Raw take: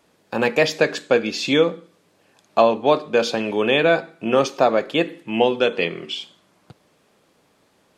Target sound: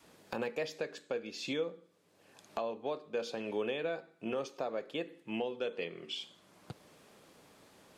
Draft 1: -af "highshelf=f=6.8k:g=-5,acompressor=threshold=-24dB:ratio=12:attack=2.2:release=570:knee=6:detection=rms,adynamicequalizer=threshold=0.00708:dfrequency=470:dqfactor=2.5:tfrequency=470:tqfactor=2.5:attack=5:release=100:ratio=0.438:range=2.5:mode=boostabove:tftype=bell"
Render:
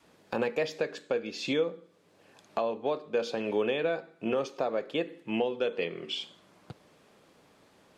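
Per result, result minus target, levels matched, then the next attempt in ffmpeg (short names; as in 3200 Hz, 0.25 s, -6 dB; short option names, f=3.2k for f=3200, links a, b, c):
compressor: peak gain reduction -6.5 dB; 8000 Hz band -4.0 dB
-af "highshelf=f=6.8k:g=-5,acompressor=threshold=-31dB:ratio=12:attack=2.2:release=570:knee=6:detection=rms,adynamicequalizer=threshold=0.00708:dfrequency=470:dqfactor=2.5:tfrequency=470:tqfactor=2.5:attack=5:release=100:ratio=0.438:range=2.5:mode=boostabove:tftype=bell"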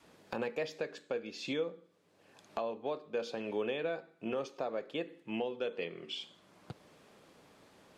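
8000 Hz band -3.5 dB
-af "highshelf=f=6.8k:g=3,acompressor=threshold=-31dB:ratio=12:attack=2.2:release=570:knee=6:detection=rms,adynamicequalizer=threshold=0.00708:dfrequency=470:dqfactor=2.5:tfrequency=470:tqfactor=2.5:attack=5:release=100:ratio=0.438:range=2.5:mode=boostabove:tftype=bell"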